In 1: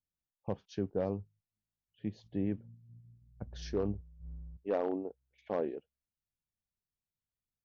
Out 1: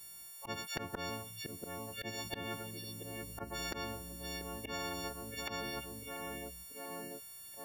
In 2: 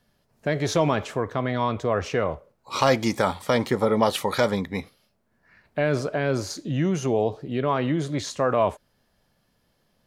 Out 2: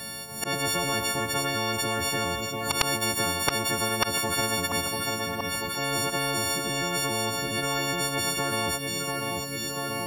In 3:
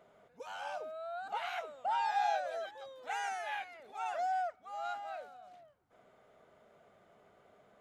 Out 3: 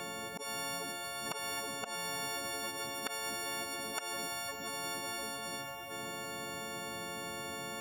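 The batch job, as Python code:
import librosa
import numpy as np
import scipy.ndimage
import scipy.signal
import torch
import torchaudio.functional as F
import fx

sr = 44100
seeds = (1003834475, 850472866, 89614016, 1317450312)

p1 = fx.freq_snap(x, sr, grid_st=4)
p2 = scipy.signal.sosfilt(scipy.signal.butter(2, 67.0, 'highpass', fs=sr, output='sos'), p1)
p3 = fx.auto_swell(p2, sr, attack_ms=209.0)
p4 = p3 + fx.echo_feedback(p3, sr, ms=689, feedback_pct=50, wet_db=-24, dry=0)
y = fx.spectral_comp(p4, sr, ratio=10.0)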